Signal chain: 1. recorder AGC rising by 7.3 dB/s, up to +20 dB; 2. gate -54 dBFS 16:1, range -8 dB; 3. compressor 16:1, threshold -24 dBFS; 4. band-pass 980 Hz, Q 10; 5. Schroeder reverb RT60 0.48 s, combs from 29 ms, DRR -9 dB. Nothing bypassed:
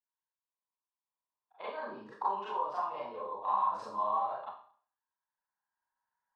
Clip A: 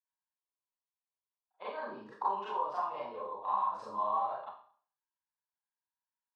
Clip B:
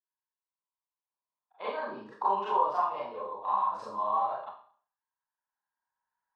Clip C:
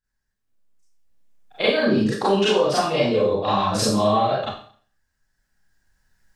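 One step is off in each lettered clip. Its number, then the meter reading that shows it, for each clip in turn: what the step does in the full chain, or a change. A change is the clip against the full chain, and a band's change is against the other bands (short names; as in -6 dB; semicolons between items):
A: 1, momentary loudness spread change -1 LU; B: 3, mean gain reduction 3.0 dB; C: 4, 1 kHz band -18.0 dB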